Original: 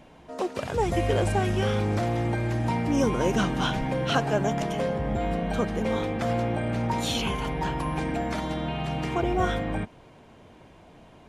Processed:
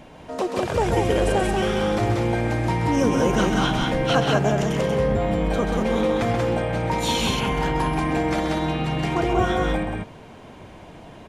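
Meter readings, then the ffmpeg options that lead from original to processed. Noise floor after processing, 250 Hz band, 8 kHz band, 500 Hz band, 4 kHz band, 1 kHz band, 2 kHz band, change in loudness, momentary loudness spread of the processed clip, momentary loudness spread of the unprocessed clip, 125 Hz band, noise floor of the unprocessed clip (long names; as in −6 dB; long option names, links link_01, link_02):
−43 dBFS, +4.5 dB, +5.5 dB, +5.5 dB, +5.5 dB, +5.0 dB, +5.5 dB, +5.0 dB, 4 LU, 6 LU, +3.5 dB, −52 dBFS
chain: -filter_complex "[0:a]asplit=2[link_01][link_02];[link_02]acompressor=threshold=-32dB:ratio=6,volume=1dB[link_03];[link_01][link_03]amix=inputs=2:normalize=0,aecho=1:1:131.2|186.6:0.447|0.708"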